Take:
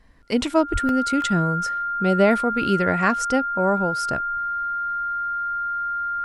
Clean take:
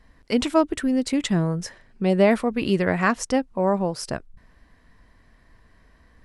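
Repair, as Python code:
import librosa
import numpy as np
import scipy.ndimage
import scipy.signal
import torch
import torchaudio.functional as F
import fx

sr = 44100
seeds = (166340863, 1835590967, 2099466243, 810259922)

y = fx.notch(x, sr, hz=1400.0, q=30.0)
y = fx.fix_deplosive(y, sr, at_s=(0.72,))
y = fx.fix_interpolate(y, sr, at_s=(0.89, 1.22), length_ms=1.3)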